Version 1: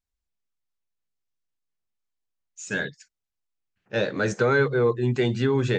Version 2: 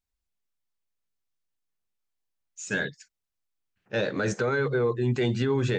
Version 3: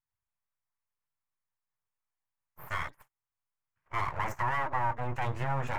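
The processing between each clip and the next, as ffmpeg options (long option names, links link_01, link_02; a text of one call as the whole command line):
ffmpeg -i in.wav -af "alimiter=limit=-17dB:level=0:latency=1:release=32" out.wav
ffmpeg -i in.wav -af "aeval=exprs='abs(val(0))':channel_layout=same,equalizer=frequency=125:width_type=o:width=1:gain=11,equalizer=frequency=250:width_type=o:width=1:gain=-8,equalizer=frequency=1000:width_type=o:width=1:gain=12,equalizer=frequency=2000:width_type=o:width=1:gain=7,equalizer=frequency=4000:width_type=o:width=1:gain=-10,volume=-9dB" out.wav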